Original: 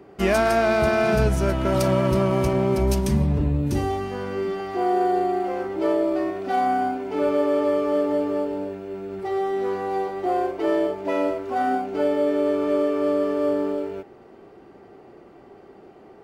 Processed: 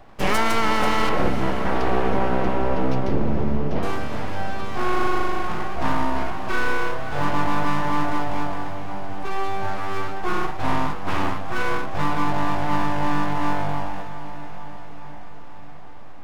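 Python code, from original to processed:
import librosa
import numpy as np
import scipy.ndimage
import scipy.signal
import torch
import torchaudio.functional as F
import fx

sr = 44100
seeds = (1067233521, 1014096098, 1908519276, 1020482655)

y = np.abs(x)
y = fx.air_absorb(y, sr, metres=280.0, at=(1.09, 3.83))
y = fx.echo_diffused(y, sr, ms=486, feedback_pct=65, wet_db=-12.0)
y = F.gain(torch.from_numpy(y), 2.0).numpy()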